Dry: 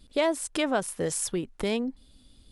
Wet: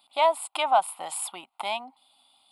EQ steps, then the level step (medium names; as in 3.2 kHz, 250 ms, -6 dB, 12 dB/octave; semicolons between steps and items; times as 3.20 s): resonant high-pass 790 Hz, resonance Q 4.3; static phaser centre 1.7 kHz, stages 6; +3.0 dB